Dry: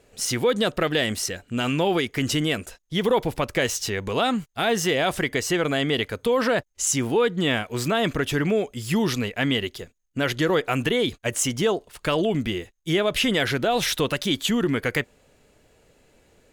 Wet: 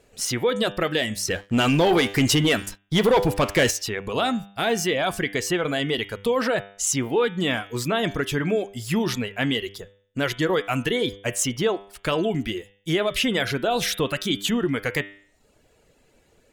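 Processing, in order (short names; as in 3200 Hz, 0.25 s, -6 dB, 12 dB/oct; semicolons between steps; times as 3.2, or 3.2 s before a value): reverb removal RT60 0.65 s; de-hum 99.41 Hz, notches 37; 1.28–3.71 sample leveller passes 2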